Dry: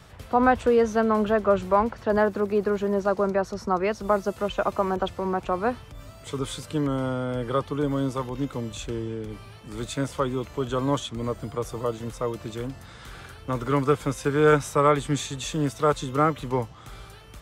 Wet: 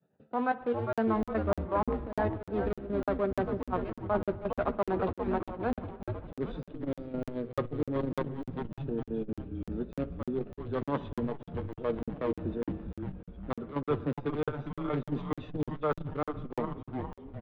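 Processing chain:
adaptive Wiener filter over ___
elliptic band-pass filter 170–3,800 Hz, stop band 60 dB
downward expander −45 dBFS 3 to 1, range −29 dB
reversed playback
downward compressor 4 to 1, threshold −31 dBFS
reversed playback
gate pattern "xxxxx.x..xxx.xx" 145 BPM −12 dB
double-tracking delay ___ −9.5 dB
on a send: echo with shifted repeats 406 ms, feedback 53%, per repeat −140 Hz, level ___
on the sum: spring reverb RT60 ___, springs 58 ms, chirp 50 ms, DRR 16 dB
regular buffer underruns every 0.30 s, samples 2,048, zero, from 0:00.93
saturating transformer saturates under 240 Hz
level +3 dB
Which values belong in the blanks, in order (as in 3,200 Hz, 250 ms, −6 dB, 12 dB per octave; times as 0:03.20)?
41 samples, 13 ms, −5 dB, 1.8 s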